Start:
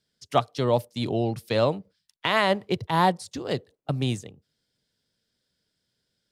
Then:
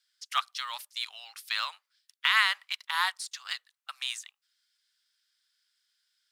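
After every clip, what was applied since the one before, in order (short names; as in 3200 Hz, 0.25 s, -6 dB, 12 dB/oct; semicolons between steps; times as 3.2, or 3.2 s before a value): steep high-pass 1200 Hz 36 dB/oct; in parallel at -9 dB: short-mantissa float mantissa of 2-bit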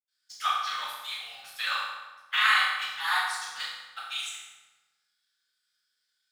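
in parallel at -7 dB: sample gate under -42 dBFS; on the sum: AM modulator 27 Hz, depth 55%; reverb RT60 1.2 s, pre-delay 77 ms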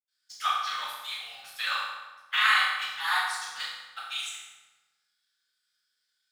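nothing audible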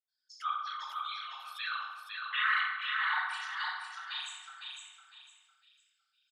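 formant sharpening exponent 2; on a send: feedback echo 0.505 s, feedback 30%, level -4 dB; on the sum: gain -7 dB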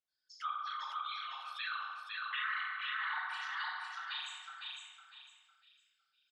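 compressor 3:1, threshold -37 dBFS, peak gain reduction 9.5 dB; air absorption 76 m; gain +1 dB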